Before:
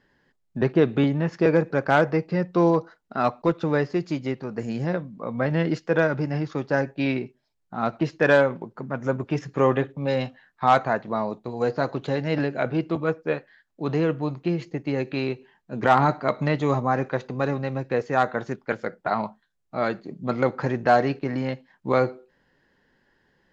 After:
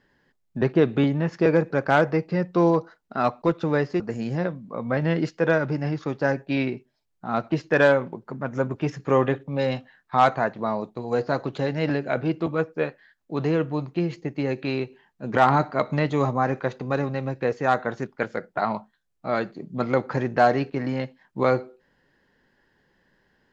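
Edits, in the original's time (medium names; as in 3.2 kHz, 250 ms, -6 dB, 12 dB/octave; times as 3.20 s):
4.00–4.49 s: delete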